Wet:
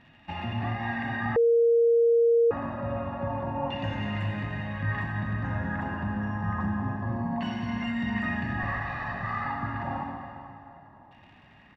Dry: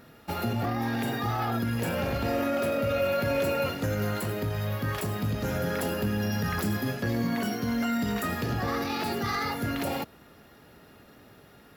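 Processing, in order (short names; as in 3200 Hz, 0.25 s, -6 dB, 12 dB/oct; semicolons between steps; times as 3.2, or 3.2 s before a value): 8.62–9.46 minimum comb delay 1.6 ms; comb 1.1 ms, depth 83%; crackle 90/s -38 dBFS; LFO low-pass saw down 0.27 Hz 890–2700 Hz; reverb RT60 2.7 s, pre-delay 53 ms, DRR 2 dB; 1.36–2.51 bleep 466 Hz -10 dBFS; gain -7.5 dB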